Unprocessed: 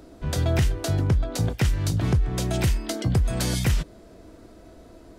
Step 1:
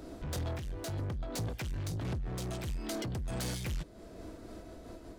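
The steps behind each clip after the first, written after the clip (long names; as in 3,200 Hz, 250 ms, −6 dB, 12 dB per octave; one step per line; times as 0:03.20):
downward compressor, threshold −27 dBFS, peak gain reduction 10 dB
soft clipping −34 dBFS, distortion −9 dB
amplitude modulation by smooth noise, depth 60%
level +2.5 dB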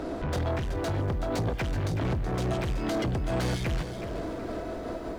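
in parallel at +1 dB: brickwall limiter −40.5 dBFS, peak gain reduction 9 dB
on the sum: mid-hump overdrive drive 10 dB, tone 1,200 Hz, clips at −28.5 dBFS
feedback echo at a low word length 375 ms, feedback 35%, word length 11 bits, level −10 dB
level +8 dB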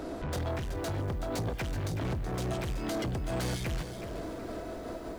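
high-shelf EQ 6,700 Hz +9.5 dB
level −4.5 dB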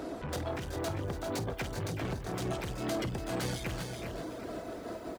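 reverb reduction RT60 0.61 s
high-pass filter 110 Hz 6 dB per octave
multi-tap delay 51/288/400 ms −14.5/−12.5/−7.5 dB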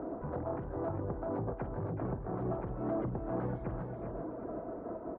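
low-pass filter 1,200 Hz 24 dB per octave
parametric band 82 Hz −6 dB 0.42 octaves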